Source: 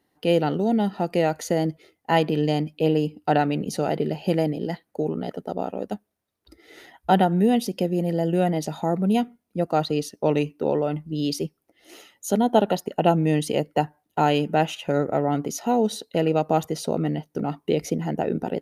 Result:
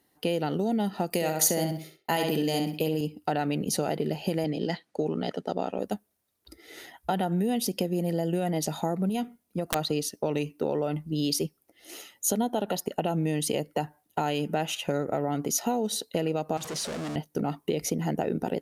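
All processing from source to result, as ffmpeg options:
-filter_complex "[0:a]asettb=1/sr,asplit=3[a][b][c];[a]atrim=end=1.104[d];[b]atrim=start=1.1:end=3.01,asetpts=PTS-STARTPTS,afade=t=in:d=0.004:c=qsin,afade=t=out:st=1.906:d=0.004:c=qsin,agate=range=-33dB:threshold=-52dB:ratio=3:release=100:detection=peak,aemphasis=mode=production:type=50kf,asplit=2[e][f];[f]adelay=64,lowpass=f=4.4k:p=1,volume=-5dB,asplit=2[g][h];[h]adelay=64,lowpass=f=4.4k:p=1,volume=0.3,asplit=2[i][j];[j]adelay=64,lowpass=f=4.4k:p=1,volume=0.3,asplit=2[k][l];[l]adelay=64,lowpass=f=4.4k:p=1,volume=0.3[m];[e][g][i][k][m]amix=inputs=5:normalize=0,atrim=end_sample=84231[n];[c]atrim=start=3.006[o];[d][n]acrossfade=d=0.004:c1=hsin:c2=qsin[p];[p][o]acrossfade=d=0.004:c1=qsin:c2=hsin,asettb=1/sr,asplit=3[q][r][s];[q]atrim=end=4.444[t];[r]atrim=start=4.44:end=5.79,asetpts=PTS-STARTPTS,afade=t=in:d=0.004:c=qsin,afade=t=out:st=1.346:d=0.004:c=qsin,highpass=110,lowpass=4.5k,highshelf=f=2.6k:g=9[u];[s]atrim=start=5.786[v];[t][u]acrossfade=d=0.004:c1=hsin:c2=qsin[w];[w][v]acrossfade=d=0.004:c1=qsin:c2=hsin,asettb=1/sr,asplit=3[x][y][z];[x]atrim=end=9.094[aa];[y]atrim=start=9.09:end=9.76,asetpts=PTS-STARTPTS,afade=t=in:d=0.004:c=qsin,afade=t=out:st=0.666:d=0.004:c=qsin,acompressor=threshold=-22dB:ratio=10:attack=3.2:release=140:knee=1:detection=peak,aeval=exprs='(mod(7.08*val(0)+1,2)-1)/7.08':c=same[ab];[z]atrim=start=9.756[ac];[aa][ab]acrossfade=d=0.004:c1=hsin:c2=qsin[ad];[ad][ac]acrossfade=d=0.004:c1=qsin:c2=hsin,asettb=1/sr,asplit=3[ae][af][ag];[ae]atrim=end=16.574[ah];[af]atrim=start=16.57:end=17.16,asetpts=PTS-STARTPTS,afade=t=in:d=0.004:c=qsin,afade=t=out:st=0.586:d=0.004:c=qsin,aeval=exprs='val(0)+0.5*0.0266*sgn(val(0))':c=same,aeval=exprs='(tanh(35.5*val(0)+0.6)-tanh(0.6))/35.5':c=same,highpass=120,lowpass=7.8k[ai];[ag]atrim=start=17.156[aj];[ah][ai]acrossfade=d=0.004:c1=hsin:c2=qsin[ak];[ak][aj]acrossfade=d=0.004:c1=qsin:c2=hsin,alimiter=limit=-12.5dB:level=0:latency=1:release=70,acompressor=threshold=-23dB:ratio=6,aemphasis=mode=production:type=cd"

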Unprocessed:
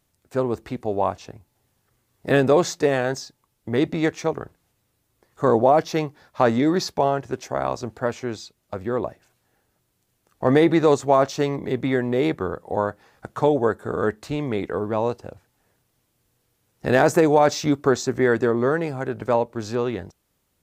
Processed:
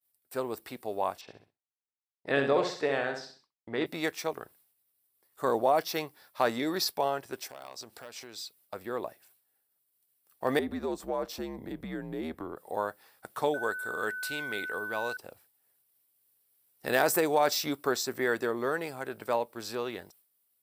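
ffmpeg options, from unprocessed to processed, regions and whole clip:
-filter_complex "[0:a]asettb=1/sr,asplit=3[a][b][c];[a]atrim=end=1.214[d];[b]atrim=start=1.21:end=3.86,asetpts=PTS-STARTPTS,afade=t=in:d=0.004:c=qsin,afade=t=out:st=2.646:d=0.004:c=qsin,lowpass=3.1k,aecho=1:1:65|130|195|260:0.473|0.161|0.0547|0.0186,atrim=end_sample=116865[e];[c]atrim=start=3.856[f];[d][e]acrossfade=d=0.004:c1=hsin:c2=qsin[g];[g][f]acrossfade=d=0.004:c1=qsin:c2=hsin,asettb=1/sr,asplit=3[h][i][j];[h]atrim=end=7.494[k];[i]atrim=start=7.49:end=8.38,asetpts=PTS-STARTPTS,afade=t=in:d=0.004:c=qsin,afade=t=out:st=0.886:d=0.004:c=qsin,equalizer=f=5.2k:t=o:w=1.6:g=6.5,acompressor=threshold=-35dB:ratio=3:attack=3.2:release=140:knee=1:detection=peak,aeval=exprs='clip(val(0),-1,0.0447)':c=same[l];[j]atrim=start=8.376[m];[k][l]acrossfade=d=0.004:c1=hsin:c2=qsin[n];[n][m]acrossfade=d=0.004:c1=qsin:c2=hsin,asettb=1/sr,asplit=3[o][p][q];[o]atrim=end=10.594[r];[p]atrim=start=10.59:end=12.57,asetpts=PTS-STARTPTS,afade=t=in:d=0.004:c=qsin,afade=t=out:st=1.976:d=0.004:c=qsin,tiltshelf=f=1.1k:g=7,acompressor=threshold=-25dB:ratio=2:attack=3.2:release=140:knee=1:detection=peak,afreqshift=-77[s];[q]atrim=start=12.566[t];[r][s]acrossfade=d=0.004:c1=hsin:c2=qsin[u];[u][t]acrossfade=d=0.004:c1=qsin:c2=hsin,asettb=1/sr,asplit=3[v][w][x];[v]atrim=end=13.544[y];[w]atrim=start=13.54:end=15.17,asetpts=PTS-STARTPTS,afade=t=in:d=0.004:c=qsin,afade=t=out:st=1.626:d=0.004:c=qsin,tiltshelf=f=1.4k:g=-4,aeval=exprs='val(0)+0.0355*sin(2*PI*1500*n/s)':c=same[z];[x]atrim=start=15.166[aa];[y][z]acrossfade=d=0.004:c1=hsin:c2=qsin[ab];[ab][aa]acrossfade=d=0.004:c1=qsin:c2=hsin,aemphasis=mode=production:type=riaa,agate=range=-33dB:threshold=-50dB:ratio=3:detection=peak,equalizer=f=6.6k:w=4.4:g=-13,volume=-7dB"

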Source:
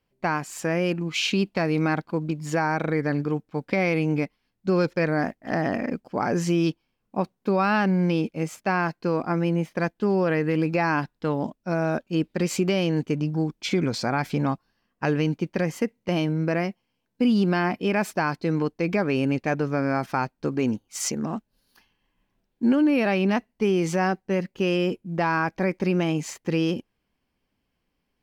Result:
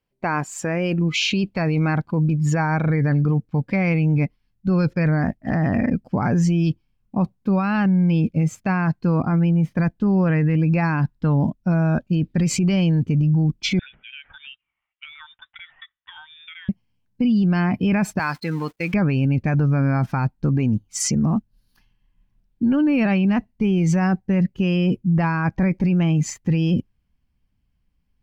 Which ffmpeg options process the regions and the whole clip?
-filter_complex "[0:a]asettb=1/sr,asplit=3[a][b][c];[a]atrim=end=13.794[d];[b]atrim=start=13.79:end=16.69,asetpts=PTS-STARTPTS,afade=t=in:d=0.004:c=qsin,afade=t=out:st=2.896:d=0.004:c=qsin,highpass=1.2k,acompressor=threshold=-41dB:ratio=4:attack=3.2:release=140:knee=1:detection=peak,lowpass=f=3.3k:t=q:w=0.5098,lowpass=f=3.3k:t=q:w=0.6013,lowpass=f=3.3k:t=q:w=0.9,lowpass=f=3.3k:t=q:w=2.563,afreqshift=-3900[e];[c]atrim=start=16.686[f];[d][e]acrossfade=d=0.004:c1=hsin:c2=qsin[g];[g][f]acrossfade=d=0.004:c1=qsin:c2=hsin,asettb=1/sr,asplit=3[h][i][j];[h]atrim=end=18.194[k];[i]atrim=start=18.19:end=18.94,asetpts=PTS-STARTPTS,afade=t=in:d=0.004:c=qsin,afade=t=out:st=0.746:d=0.004:c=qsin,aeval=exprs='val(0)+0.5*0.0188*sgn(val(0))':c=same,highpass=f=1.1k:p=1,agate=range=-29dB:threshold=-42dB:ratio=16:release=100:detection=peak[l];[j]atrim=start=18.936[m];[k][l]acrossfade=d=0.004:c1=hsin:c2=qsin[n];[n][m]acrossfade=d=0.004:c1=qsin:c2=hsin,afftdn=nr=12:nf=-38,asubboost=boost=8:cutoff=140,alimiter=limit=-20.5dB:level=0:latency=1:release=21,volume=7.5dB"

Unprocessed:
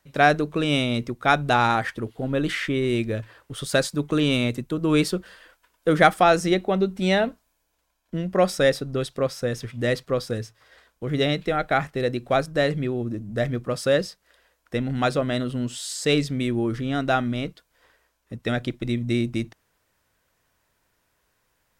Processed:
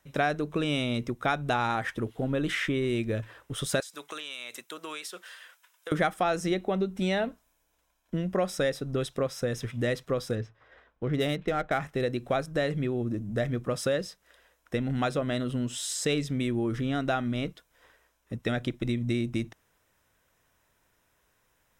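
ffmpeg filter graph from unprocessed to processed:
-filter_complex "[0:a]asettb=1/sr,asplit=3[a][b][c];[a]atrim=end=3.804[d];[b]atrim=start=3.8:end=5.92,asetpts=PTS-STARTPTS,afade=t=in:d=0.004:c=qsin,afade=t=out:st=2.116:d=0.004:c=qsin,highpass=720,tiltshelf=f=1.4k:g=-4.5,acompressor=threshold=-33dB:ratio=16:attack=3.2:release=140:knee=1:detection=peak[e];[c]atrim=start=5.916[f];[d][e]acrossfade=d=0.004:c1=hsin:c2=qsin[g];[g][f]acrossfade=d=0.004:c1=qsin:c2=hsin,asettb=1/sr,asplit=3[h][i][j];[h]atrim=end=10.354[k];[i]atrim=start=10.35:end=11.81,asetpts=PTS-STARTPTS,afade=t=in:d=0.004:c=qsin,afade=t=out:st=1.456:d=0.004:c=qsin,highshelf=f=7.8k:g=-7,adynamicsmooth=sensitivity=6.5:basefreq=2.5k[l];[j]atrim=start=11.806[m];[k][l]acrossfade=d=0.004:c1=hsin:c2=qsin[n];[n][m]acrossfade=d=0.004:c1=qsin:c2=hsin,bandreject=f=4.5k:w=6.7,acompressor=threshold=-26dB:ratio=3"

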